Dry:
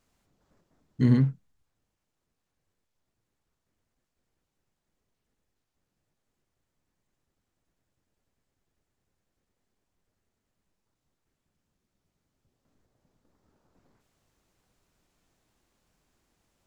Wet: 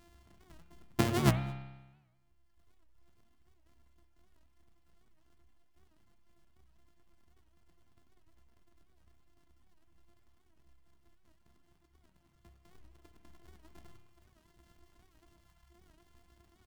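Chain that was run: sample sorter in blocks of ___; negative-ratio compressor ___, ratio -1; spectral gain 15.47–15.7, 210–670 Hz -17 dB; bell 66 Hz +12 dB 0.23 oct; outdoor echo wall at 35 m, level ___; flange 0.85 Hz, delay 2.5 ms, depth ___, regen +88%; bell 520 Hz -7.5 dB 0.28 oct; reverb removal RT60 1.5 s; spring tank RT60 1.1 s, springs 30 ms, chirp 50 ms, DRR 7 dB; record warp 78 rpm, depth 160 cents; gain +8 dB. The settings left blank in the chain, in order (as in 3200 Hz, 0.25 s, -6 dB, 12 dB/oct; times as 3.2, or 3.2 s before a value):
128 samples, -30 dBFS, -14 dB, 4.1 ms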